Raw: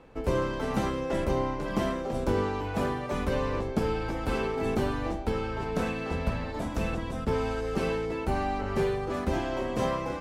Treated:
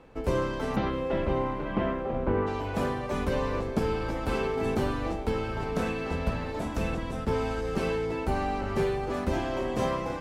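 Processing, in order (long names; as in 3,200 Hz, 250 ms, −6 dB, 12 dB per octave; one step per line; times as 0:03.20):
0:00.75–0:02.46: low-pass filter 4,300 Hz → 2,200 Hz 24 dB per octave
feedback delay with all-pass diffusion 752 ms, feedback 42%, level −14.5 dB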